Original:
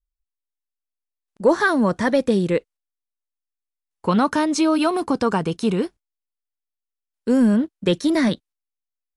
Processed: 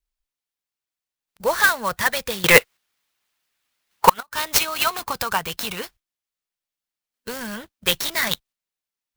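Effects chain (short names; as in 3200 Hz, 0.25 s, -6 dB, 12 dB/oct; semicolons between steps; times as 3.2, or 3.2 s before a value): passive tone stack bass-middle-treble 10-0-10; 2.44–4.23 overdrive pedal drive 30 dB, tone 2400 Hz, clips at -7.5 dBFS; harmonic-percussive split percussive +8 dB; flipped gate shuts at -5 dBFS, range -33 dB; clock jitter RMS 0.032 ms; gain +4 dB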